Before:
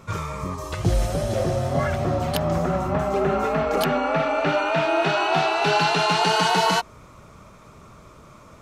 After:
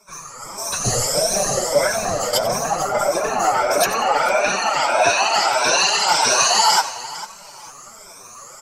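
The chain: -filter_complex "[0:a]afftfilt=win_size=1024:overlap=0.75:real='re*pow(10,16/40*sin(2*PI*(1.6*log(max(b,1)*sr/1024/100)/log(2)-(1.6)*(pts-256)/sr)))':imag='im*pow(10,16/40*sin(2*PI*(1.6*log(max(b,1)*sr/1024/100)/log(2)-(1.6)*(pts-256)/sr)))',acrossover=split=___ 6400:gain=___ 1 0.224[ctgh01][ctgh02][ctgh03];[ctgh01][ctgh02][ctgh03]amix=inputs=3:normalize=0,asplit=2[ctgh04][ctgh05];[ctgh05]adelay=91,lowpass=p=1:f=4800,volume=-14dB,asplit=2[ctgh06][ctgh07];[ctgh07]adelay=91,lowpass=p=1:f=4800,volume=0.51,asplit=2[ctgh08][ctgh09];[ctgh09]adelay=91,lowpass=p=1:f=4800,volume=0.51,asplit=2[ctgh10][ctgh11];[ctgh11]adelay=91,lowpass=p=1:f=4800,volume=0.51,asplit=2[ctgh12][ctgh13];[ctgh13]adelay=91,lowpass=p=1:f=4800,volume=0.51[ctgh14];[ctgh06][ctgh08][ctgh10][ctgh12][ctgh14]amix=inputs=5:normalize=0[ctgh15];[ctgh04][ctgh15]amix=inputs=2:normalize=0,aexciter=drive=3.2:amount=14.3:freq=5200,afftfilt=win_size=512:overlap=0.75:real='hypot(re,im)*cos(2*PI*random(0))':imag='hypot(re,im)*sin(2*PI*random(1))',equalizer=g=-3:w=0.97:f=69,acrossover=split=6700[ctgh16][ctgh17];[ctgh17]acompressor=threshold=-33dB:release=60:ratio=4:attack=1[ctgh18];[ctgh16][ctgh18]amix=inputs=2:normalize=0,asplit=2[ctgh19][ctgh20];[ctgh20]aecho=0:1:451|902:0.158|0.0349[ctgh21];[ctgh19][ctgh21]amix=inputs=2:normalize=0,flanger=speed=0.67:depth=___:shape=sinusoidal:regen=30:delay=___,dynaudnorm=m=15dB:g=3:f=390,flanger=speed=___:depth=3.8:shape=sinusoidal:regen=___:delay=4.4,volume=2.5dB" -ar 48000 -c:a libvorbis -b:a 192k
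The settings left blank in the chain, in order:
530, 0.2, 5.5, 4.9, 1.5, 34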